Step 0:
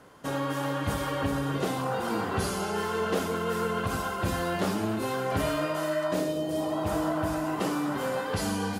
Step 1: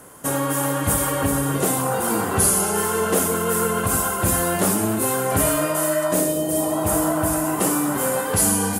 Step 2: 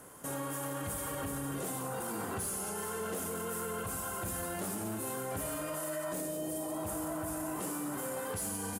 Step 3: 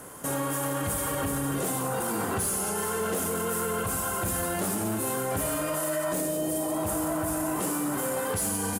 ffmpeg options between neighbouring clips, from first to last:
ffmpeg -i in.wav -af "highshelf=frequency=6500:width_type=q:width=1.5:gain=14,volume=7dB" out.wav
ffmpeg -i in.wav -af "asoftclip=type=tanh:threshold=-12dB,aecho=1:1:176:0.266,alimiter=limit=-22dB:level=0:latency=1,volume=-8dB" out.wav
ffmpeg -i in.wav -af "asoftclip=type=hard:threshold=-31.5dB,volume=8.5dB" out.wav

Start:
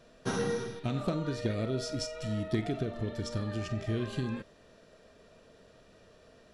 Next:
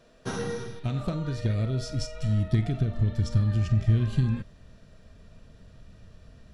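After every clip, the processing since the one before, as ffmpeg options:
ffmpeg -i in.wav -af "asubboost=boost=9.5:cutoff=140" out.wav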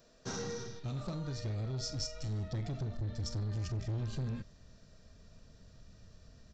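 ffmpeg -i in.wav -af "aresample=16000,asoftclip=type=tanh:threshold=-26dB,aresample=44100,aexciter=amount=2.8:drive=5.9:freq=4300,volume=-6.5dB" out.wav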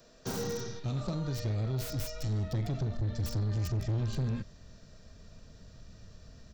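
ffmpeg -i in.wav -filter_complex "[0:a]acrossover=split=190|1100|2600[link_01][link_02][link_03][link_04];[link_03]alimiter=level_in=28.5dB:limit=-24dB:level=0:latency=1,volume=-28.5dB[link_05];[link_04]aeval=exprs='(mod(119*val(0)+1,2)-1)/119':channel_layout=same[link_06];[link_01][link_02][link_05][link_06]amix=inputs=4:normalize=0,volume=5dB" out.wav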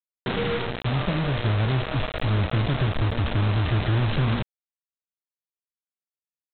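ffmpeg -i in.wav -af "aeval=exprs='val(0)+0.00355*(sin(2*PI*60*n/s)+sin(2*PI*2*60*n/s)/2+sin(2*PI*3*60*n/s)/3+sin(2*PI*4*60*n/s)/4+sin(2*PI*5*60*n/s)/5)':channel_layout=same,aresample=8000,acrusher=bits=5:mix=0:aa=0.000001,aresample=44100,volume=8.5dB" out.wav

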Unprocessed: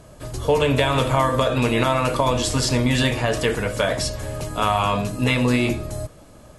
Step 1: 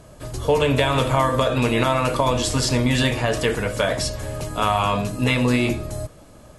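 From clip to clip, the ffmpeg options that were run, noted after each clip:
ffmpeg -i in.wav -af anull out.wav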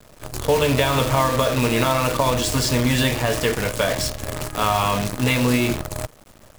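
ffmpeg -i in.wav -af "acrusher=bits=5:dc=4:mix=0:aa=0.000001" out.wav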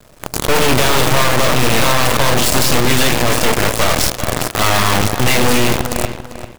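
ffmpeg -i in.wav -filter_complex "[0:a]aeval=exprs='0.531*(cos(1*acos(clip(val(0)/0.531,-1,1)))-cos(1*PI/2))+0.0335*(cos(3*acos(clip(val(0)/0.531,-1,1)))-cos(3*PI/2))+0.133*(cos(8*acos(clip(val(0)/0.531,-1,1)))-cos(8*PI/2))':channel_layout=same,asplit=2[link_01][link_02];[link_02]adelay=394,lowpass=frequency=4300:poles=1,volume=-13dB,asplit=2[link_03][link_04];[link_04]adelay=394,lowpass=frequency=4300:poles=1,volume=0.28,asplit=2[link_05][link_06];[link_06]adelay=394,lowpass=frequency=4300:poles=1,volume=0.28[link_07];[link_01][link_03][link_05][link_07]amix=inputs=4:normalize=0,asoftclip=type=hard:threshold=-12dB,volume=6dB" out.wav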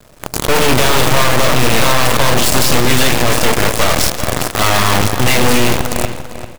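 ffmpeg -i in.wav -af "aecho=1:1:167|334|501|668|835:0.141|0.0735|0.0382|0.0199|0.0103,volume=1dB" out.wav

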